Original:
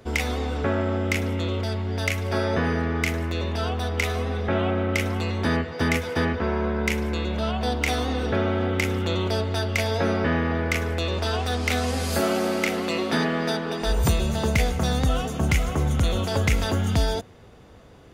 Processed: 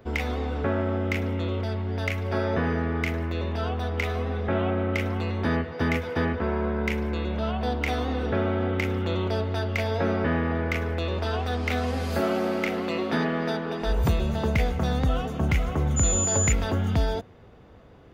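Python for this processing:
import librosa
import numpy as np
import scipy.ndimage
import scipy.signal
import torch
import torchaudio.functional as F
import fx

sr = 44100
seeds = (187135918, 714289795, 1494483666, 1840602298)

y = fx.peak_eq(x, sr, hz=8900.0, db=-13.5, octaves=1.8)
y = fx.dmg_tone(y, sr, hz=7000.0, level_db=-22.0, at=(15.96, 16.51), fade=0.02)
y = F.gain(torch.from_numpy(y), -1.5).numpy()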